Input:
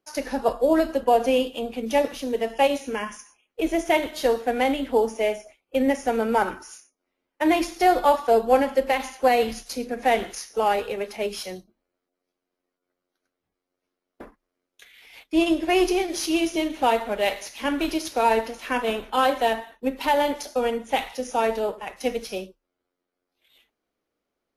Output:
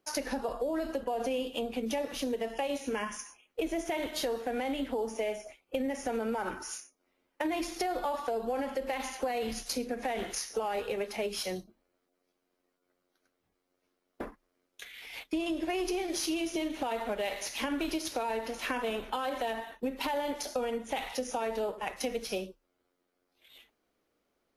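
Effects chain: limiter -17.5 dBFS, peak gain reduction 10.5 dB; compressor 4:1, threshold -35 dBFS, peak gain reduction 11.5 dB; gain +3.5 dB

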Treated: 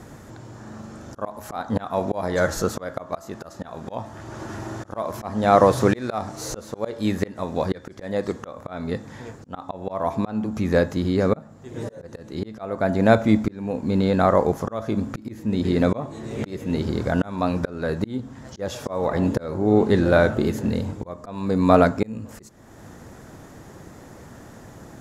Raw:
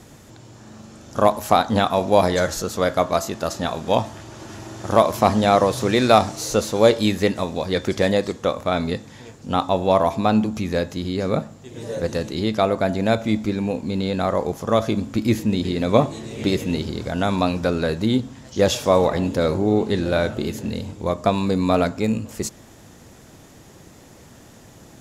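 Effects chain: resonant high shelf 2100 Hz -6 dB, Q 1.5; auto swell 0.47 s; gain +3.5 dB

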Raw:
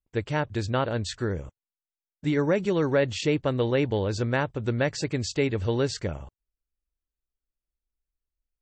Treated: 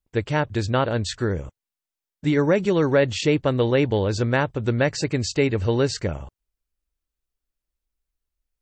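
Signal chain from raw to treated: 4.81–6.11 notch 3400 Hz, Q 12; gain +4.5 dB

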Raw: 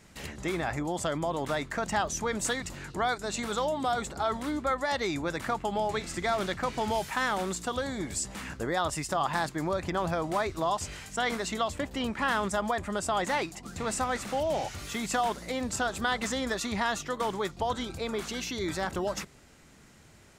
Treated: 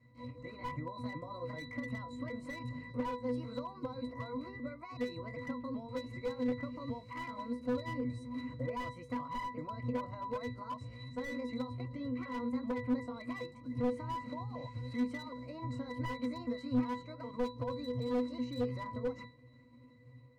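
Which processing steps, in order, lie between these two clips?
repeated pitch sweeps +5.5 st, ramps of 0.383 s; compressor 3:1, threshold -32 dBFS, peak gain reduction 7 dB; octave resonator B, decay 0.27 s; AGC gain up to 4.5 dB; slew limiter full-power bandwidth 6 Hz; gain +8 dB

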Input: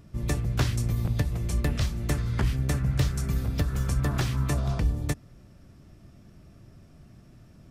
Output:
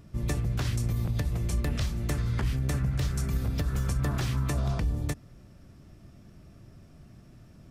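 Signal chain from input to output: limiter -20 dBFS, peak gain reduction 7.5 dB

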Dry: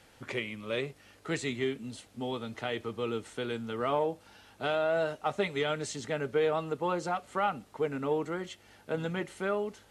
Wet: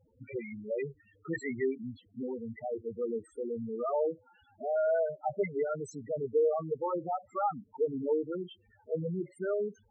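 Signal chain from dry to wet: 0.79–1.82 dynamic EQ 2200 Hz, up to +7 dB, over -50 dBFS, Q 1.1; loudest bins only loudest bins 4; gain +1.5 dB

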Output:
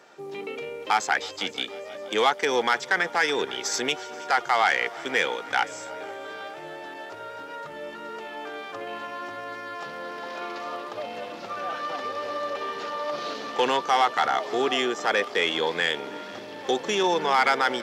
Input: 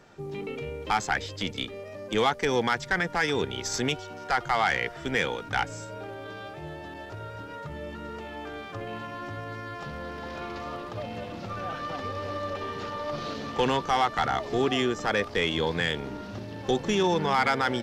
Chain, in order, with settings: HPF 390 Hz 12 dB/oct; multi-head echo 0.16 s, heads second and third, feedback 63%, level -23 dB; gain +3.5 dB

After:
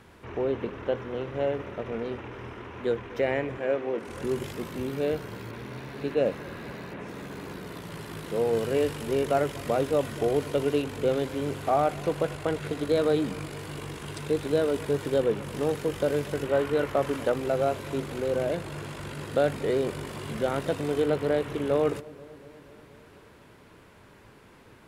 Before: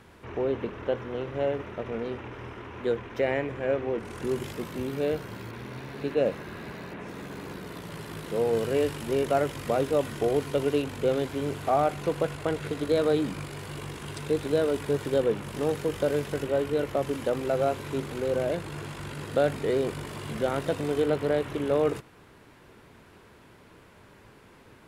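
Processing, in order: 3.58–4.08 HPF 210 Hz 12 dB/oct; 16.43–17.32 dynamic EQ 1300 Hz, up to +6 dB, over -40 dBFS, Q 0.8; on a send: dark delay 0.24 s, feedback 68%, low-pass 720 Hz, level -20 dB

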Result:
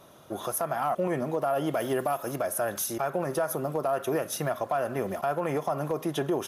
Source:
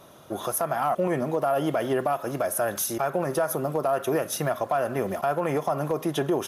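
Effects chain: 1.74–2.36 high shelf 6900 Hz +11 dB; gain -3 dB

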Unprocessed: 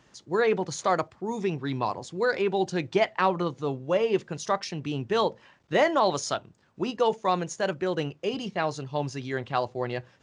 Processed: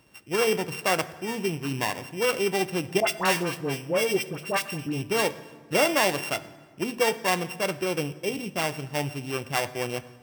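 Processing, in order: sample sorter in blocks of 16 samples; 3–5.02 dispersion highs, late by 70 ms, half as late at 1200 Hz; reverb RT60 1.6 s, pre-delay 5 ms, DRR 13 dB

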